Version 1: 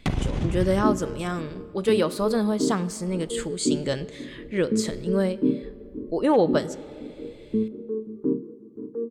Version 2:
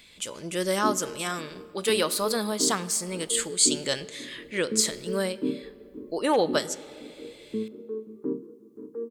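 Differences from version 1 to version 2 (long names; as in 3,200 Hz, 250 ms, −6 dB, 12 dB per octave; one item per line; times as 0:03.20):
first sound: muted
master: add spectral tilt +3.5 dB per octave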